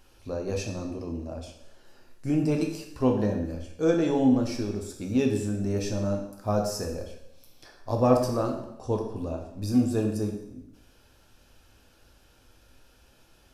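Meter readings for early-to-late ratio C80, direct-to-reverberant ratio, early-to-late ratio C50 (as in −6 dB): 8.5 dB, 2.0 dB, 6.0 dB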